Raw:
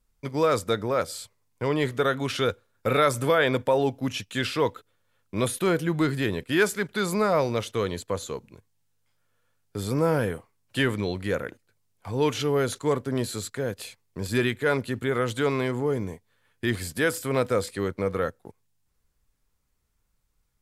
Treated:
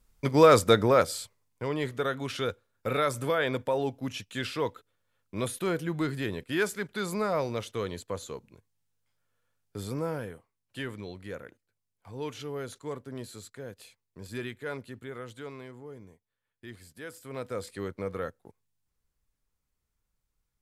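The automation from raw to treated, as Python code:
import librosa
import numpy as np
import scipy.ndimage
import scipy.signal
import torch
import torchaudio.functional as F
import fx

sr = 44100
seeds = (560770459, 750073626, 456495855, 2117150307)

y = fx.gain(x, sr, db=fx.line((0.86, 5.0), (1.67, -6.0), (9.81, -6.0), (10.29, -12.5), (14.74, -12.5), (15.79, -19.0), (17.01, -19.0), (17.75, -7.5)))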